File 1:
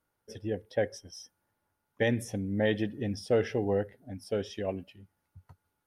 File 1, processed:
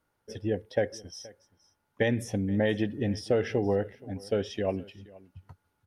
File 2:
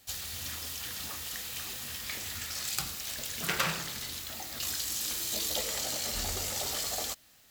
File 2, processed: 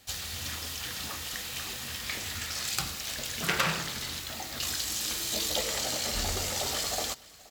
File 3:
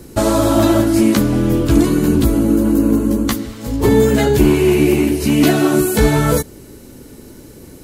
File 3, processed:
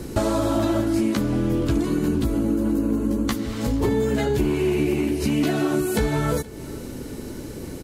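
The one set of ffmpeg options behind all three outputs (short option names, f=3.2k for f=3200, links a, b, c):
-af "highshelf=f=9k:g=-8.5,acompressor=threshold=-26dB:ratio=4,aecho=1:1:474:0.0794,volume=4.5dB"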